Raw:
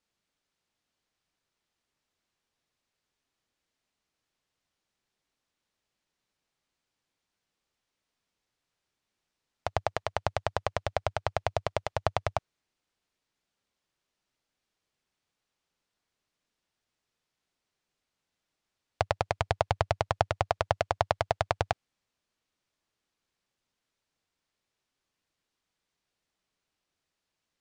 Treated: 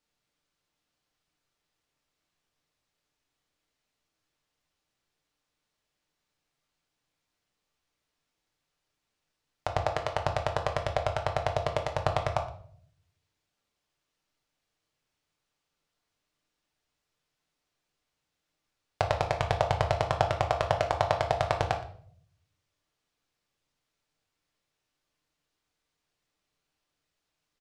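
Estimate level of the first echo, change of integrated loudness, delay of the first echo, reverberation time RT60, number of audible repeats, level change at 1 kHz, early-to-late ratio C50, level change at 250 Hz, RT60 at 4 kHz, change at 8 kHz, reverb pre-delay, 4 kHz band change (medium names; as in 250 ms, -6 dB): -20.0 dB, +2.5 dB, 119 ms, 0.55 s, 1, +2.0 dB, 10.0 dB, +3.0 dB, 0.45 s, +1.0 dB, 7 ms, +1.5 dB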